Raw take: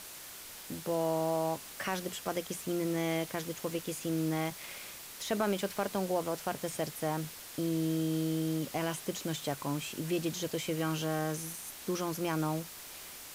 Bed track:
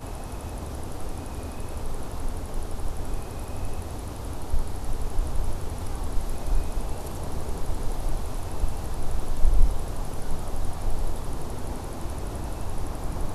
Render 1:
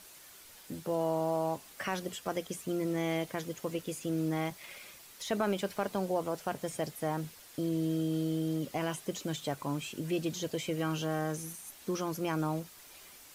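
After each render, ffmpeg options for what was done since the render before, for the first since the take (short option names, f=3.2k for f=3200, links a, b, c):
-af "afftdn=nr=8:nf=-47"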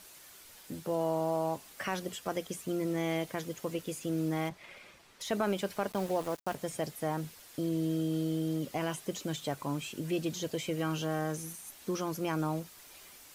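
-filter_complex "[0:a]asettb=1/sr,asplit=3[a][b][c];[a]atrim=end=4.494[d];[b]atrim=start=4.49:end=5.21,asetpts=PTS-STARTPTS,afade=t=in:d=0.004:c=qsin,afade=t=out:st=0.716:d=0.004:c=qsin,aemphasis=mode=reproduction:type=75fm[e];[c]atrim=start=5.206[f];[d][e]acrossfade=d=0.004:c1=hsin:c2=qsin[g];[g][f]acrossfade=d=0.004:c1=qsin:c2=hsin,asettb=1/sr,asplit=3[h][i][j];[h]atrim=end=5.924[k];[i]atrim=start=5.92:end=6.55,asetpts=PTS-STARTPTS,afade=t=in:d=0.004:c=qsin,afade=t=out:st=0.626:d=0.004:c=qsin,aeval=exprs='val(0)*gte(abs(val(0)),0.00891)':c=same[l];[j]atrim=start=6.546[m];[k][l]acrossfade=d=0.004:c1=hsin:c2=qsin[n];[n][m]acrossfade=d=0.004:c1=qsin:c2=hsin"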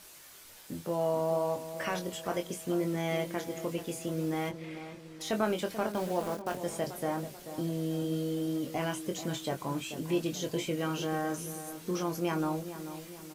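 -filter_complex "[0:a]asplit=2[a][b];[b]adelay=23,volume=-5.5dB[c];[a][c]amix=inputs=2:normalize=0,asplit=2[d][e];[e]adelay=436,lowpass=f=1.4k:p=1,volume=-10.5dB,asplit=2[f][g];[g]adelay=436,lowpass=f=1.4k:p=1,volume=0.51,asplit=2[h][i];[i]adelay=436,lowpass=f=1.4k:p=1,volume=0.51,asplit=2[j][k];[k]adelay=436,lowpass=f=1.4k:p=1,volume=0.51,asplit=2[l][m];[m]adelay=436,lowpass=f=1.4k:p=1,volume=0.51,asplit=2[n][o];[o]adelay=436,lowpass=f=1.4k:p=1,volume=0.51[p];[d][f][h][j][l][n][p]amix=inputs=7:normalize=0"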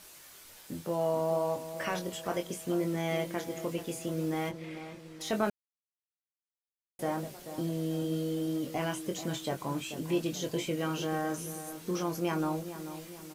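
-filter_complex "[0:a]asplit=3[a][b][c];[a]atrim=end=5.5,asetpts=PTS-STARTPTS,afade=t=out:st=5.496:d=0.004:c=hsin[d];[b]atrim=start=5.5:end=6.99,asetpts=PTS-STARTPTS,volume=0[e];[c]atrim=start=6.99,asetpts=PTS-STARTPTS,afade=t=in:d=0.004:c=hsin[f];[d][e][f]concat=n=3:v=0:a=1"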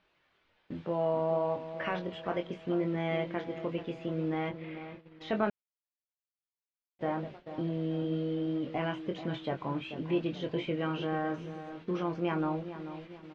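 -af "agate=range=-13dB:threshold=-46dB:ratio=16:detection=peak,lowpass=f=3.2k:w=0.5412,lowpass=f=3.2k:w=1.3066"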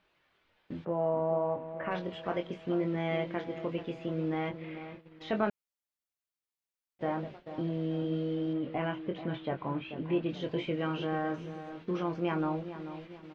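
-filter_complex "[0:a]asplit=3[a][b][c];[a]afade=t=out:st=0.84:d=0.02[d];[b]lowpass=1.5k,afade=t=in:st=0.84:d=0.02,afade=t=out:st=1.9:d=0.02[e];[c]afade=t=in:st=1.9:d=0.02[f];[d][e][f]amix=inputs=3:normalize=0,asettb=1/sr,asplit=3[g][h][i];[g]atrim=end=8.534[j];[h]atrim=start=8.53:end=10.29,asetpts=PTS-STARTPTS,afade=t=in:d=0.004:c=qsin,afade=t=out:st=1.756:d=0.004:c=qsin,lowpass=3.1k[k];[i]atrim=start=10.286[l];[j][k]acrossfade=d=0.004:c1=hsin:c2=qsin[m];[m][l]acrossfade=d=0.004:c1=qsin:c2=hsin"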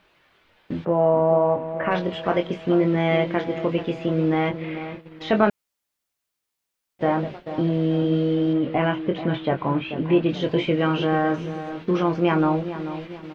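-af "volume=11.5dB"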